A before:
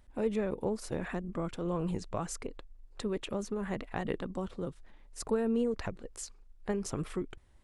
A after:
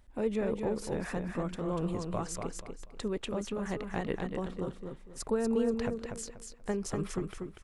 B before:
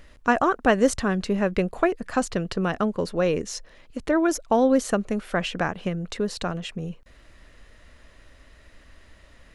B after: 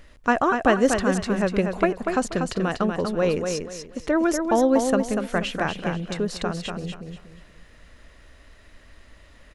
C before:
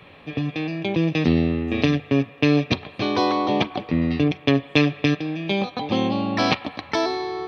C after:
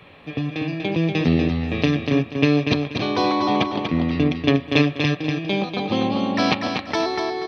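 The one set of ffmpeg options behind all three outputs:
-af "aecho=1:1:241|482|723|964:0.531|0.149|0.0416|0.0117"

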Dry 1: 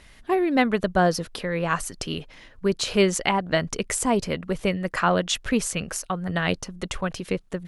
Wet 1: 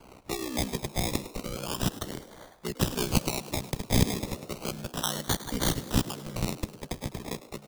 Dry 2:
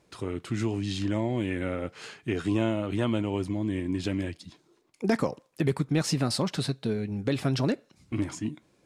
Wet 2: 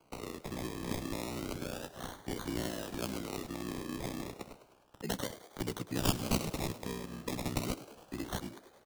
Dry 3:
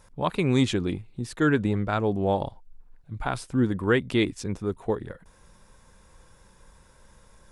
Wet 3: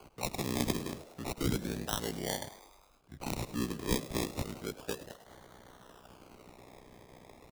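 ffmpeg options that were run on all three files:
-filter_complex "[0:a]aemphasis=mode=production:type=riaa,aeval=exprs='val(0)*sin(2*PI*31*n/s)':c=same,acrusher=samples=24:mix=1:aa=0.000001:lfo=1:lforange=14.4:lforate=0.32,acrossover=split=270|3000[a][b][c];[b]acompressor=threshold=-44dB:ratio=2[d];[a][d][c]amix=inputs=3:normalize=0,asplit=2[e][f];[f]asplit=6[g][h][i][j][k][l];[g]adelay=103,afreqshift=93,volume=-16dB[m];[h]adelay=206,afreqshift=186,volume=-20.2dB[n];[i]adelay=309,afreqshift=279,volume=-24.3dB[o];[j]adelay=412,afreqshift=372,volume=-28.5dB[p];[k]adelay=515,afreqshift=465,volume=-32.6dB[q];[l]adelay=618,afreqshift=558,volume=-36.8dB[r];[m][n][o][p][q][r]amix=inputs=6:normalize=0[s];[e][s]amix=inputs=2:normalize=0"

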